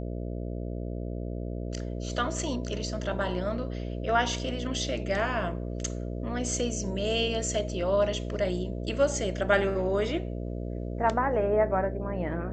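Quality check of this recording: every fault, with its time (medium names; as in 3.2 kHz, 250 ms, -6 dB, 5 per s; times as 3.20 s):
buzz 60 Hz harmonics 11 -34 dBFS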